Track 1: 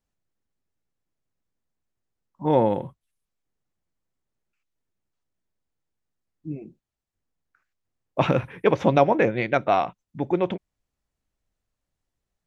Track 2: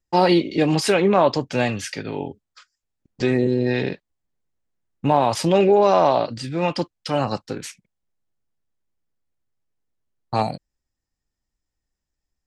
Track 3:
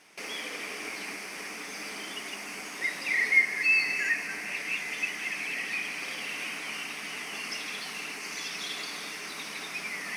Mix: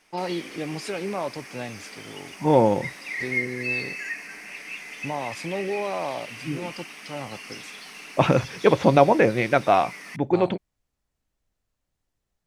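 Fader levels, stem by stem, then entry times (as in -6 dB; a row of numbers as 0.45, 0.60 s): +2.0, -13.0, -4.5 dB; 0.00, 0.00, 0.00 s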